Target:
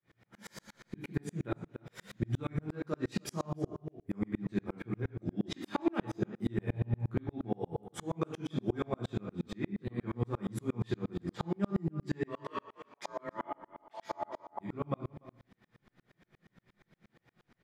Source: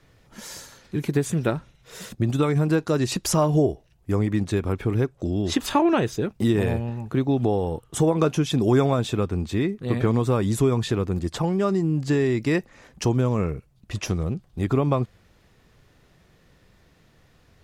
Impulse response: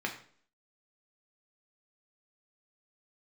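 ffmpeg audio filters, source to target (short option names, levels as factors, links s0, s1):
-filter_complex "[0:a]acompressor=threshold=0.0316:ratio=2,asplit=3[s0][s1][s2];[s0]afade=t=out:st=12.27:d=0.02[s3];[s1]aeval=exprs='val(0)*sin(2*PI*770*n/s)':c=same,afade=t=in:st=12.27:d=0.02,afade=t=out:st=14.59:d=0.02[s4];[s2]afade=t=in:st=14.59:d=0.02[s5];[s3][s4][s5]amix=inputs=3:normalize=0,asplit=2[s6][s7];[s7]adelay=291.5,volume=0.251,highshelf=f=4000:g=-6.56[s8];[s6][s8]amix=inputs=2:normalize=0[s9];[1:a]atrim=start_sample=2205,asetrate=41895,aresample=44100[s10];[s9][s10]afir=irnorm=-1:irlink=0,aeval=exprs='val(0)*pow(10,-39*if(lt(mod(-8.5*n/s,1),2*abs(-8.5)/1000),1-mod(-8.5*n/s,1)/(2*abs(-8.5)/1000),(mod(-8.5*n/s,1)-2*abs(-8.5)/1000)/(1-2*abs(-8.5)/1000))/20)':c=same,volume=0.631"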